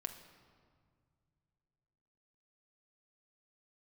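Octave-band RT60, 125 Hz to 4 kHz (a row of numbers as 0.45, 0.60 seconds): 3.4, 2.8, 2.1, 1.9, 1.5, 1.3 seconds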